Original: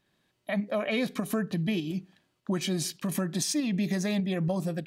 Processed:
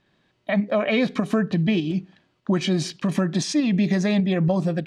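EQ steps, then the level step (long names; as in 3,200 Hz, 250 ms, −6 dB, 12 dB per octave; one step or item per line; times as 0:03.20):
high-frequency loss of the air 110 metres
+8.0 dB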